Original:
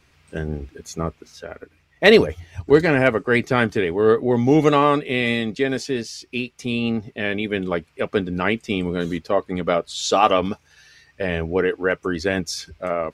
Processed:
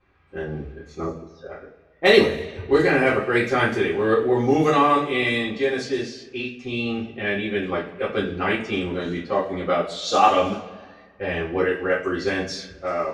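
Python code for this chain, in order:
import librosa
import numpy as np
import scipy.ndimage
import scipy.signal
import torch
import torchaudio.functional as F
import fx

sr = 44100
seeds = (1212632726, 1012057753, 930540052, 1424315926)

y = fx.envelope_sharpen(x, sr, power=2.0, at=(1.03, 1.49))
y = fx.rev_double_slope(y, sr, seeds[0], early_s=0.33, late_s=1.6, knee_db=-18, drr_db=-8.0)
y = fx.env_lowpass(y, sr, base_hz=1800.0, full_db=-8.0)
y = y * 10.0 ** (-9.0 / 20.0)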